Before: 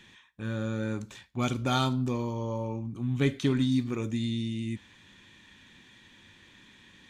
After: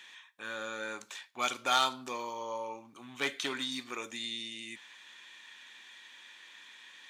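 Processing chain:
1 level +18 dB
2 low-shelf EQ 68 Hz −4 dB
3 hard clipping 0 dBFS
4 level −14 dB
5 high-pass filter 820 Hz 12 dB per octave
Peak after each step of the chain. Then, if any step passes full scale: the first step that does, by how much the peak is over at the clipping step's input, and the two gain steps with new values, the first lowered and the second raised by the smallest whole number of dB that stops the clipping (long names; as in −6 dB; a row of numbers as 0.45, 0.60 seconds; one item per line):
+5.5, +6.0, 0.0, −14.0, −14.0 dBFS
step 1, 6.0 dB
step 1 +12 dB, step 4 −8 dB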